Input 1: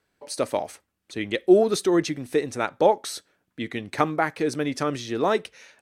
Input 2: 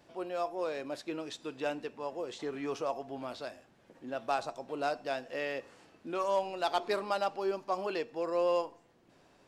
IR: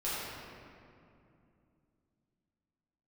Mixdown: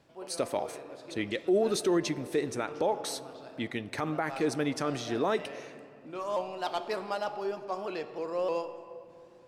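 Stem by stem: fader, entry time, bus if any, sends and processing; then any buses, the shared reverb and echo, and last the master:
−4.0 dB, 0.00 s, send −24 dB, no processing
−3.0 dB, 0.00 s, send −15.5 dB, parametric band 130 Hz +6 dB 0.86 octaves; pitch modulation by a square or saw wave saw up 3.3 Hz, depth 100 cents; automatic ducking −10 dB, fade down 0.40 s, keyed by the first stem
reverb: on, RT60 2.6 s, pre-delay 5 ms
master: brickwall limiter −18.5 dBFS, peak gain reduction 11 dB

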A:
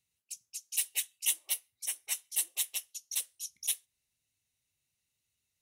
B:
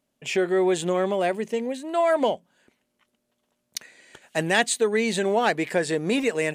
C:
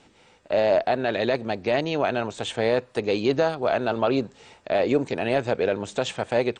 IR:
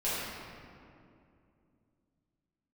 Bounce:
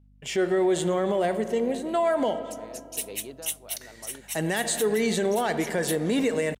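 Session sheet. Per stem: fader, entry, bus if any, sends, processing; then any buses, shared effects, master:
−1.0 dB, 2.20 s, no send, no processing
−3.0 dB, 0.00 s, send −19.5 dB, high-shelf EQ 9,600 Hz +5 dB; notch filter 2,500 Hz, Q 7.3; harmonic and percussive parts rebalanced harmonic +4 dB
−13.0 dB, 0.00 s, no send, automatic ducking −12 dB, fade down 0.60 s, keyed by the second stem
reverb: on, RT60 2.5 s, pre-delay 5 ms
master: noise gate with hold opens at −41 dBFS; mains hum 50 Hz, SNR 32 dB; brickwall limiter −16 dBFS, peak gain reduction 8.5 dB

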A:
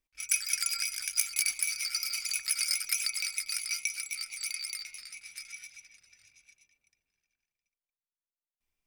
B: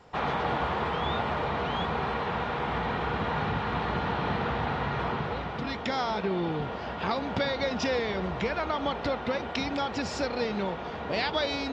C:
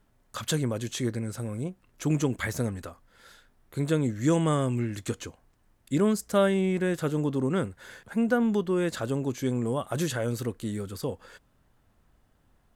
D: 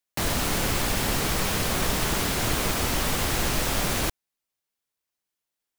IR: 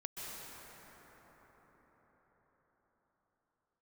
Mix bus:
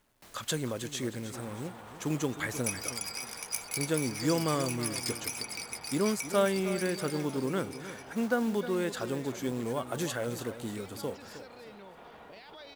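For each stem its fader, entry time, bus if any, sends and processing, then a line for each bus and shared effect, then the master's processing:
−6.5 dB, 2.35 s, no bus, no send, no echo send, no processing
−13.5 dB, 1.20 s, bus A, no send, no echo send, no processing
−2.5 dB, 0.00 s, no bus, no send, echo send −12.5 dB, log-companded quantiser 6 bits
−19.5 dB, 0.05 s, bus A, no send, no echo send, automatic ducking −10 dB, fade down 0.25 s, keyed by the third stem
bus A: 0.0 dB, brickwall limiter −39.5 dBFS, peak gain reduction 11.5 dB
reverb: not used
echo: repeating echo 313 ms, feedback 35%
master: low-shelf EQ 180 Hz −9.5 dB

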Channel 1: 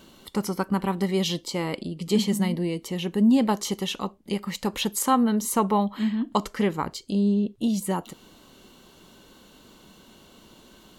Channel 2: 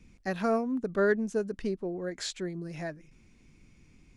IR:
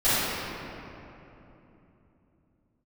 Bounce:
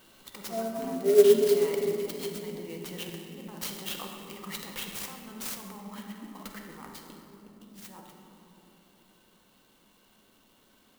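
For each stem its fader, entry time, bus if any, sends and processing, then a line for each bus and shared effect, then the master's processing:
0:06.38 −13.5 dB → 0:06.83 −20.5 dB, 0.00 s, send −18 dB, compressor whose output falls as the input rises −30 dBFS, ratio −1
−4.0 dB, 0.05 s, send −5.5 dB, every bin expanded away from the loudest bin 4 to 1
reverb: on, RT60 3.2 s, pre-delay 4 ms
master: tilt shelving filter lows −4.5 dB, about 670 Hz; converter with an unsteady clock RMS 0.041 ms

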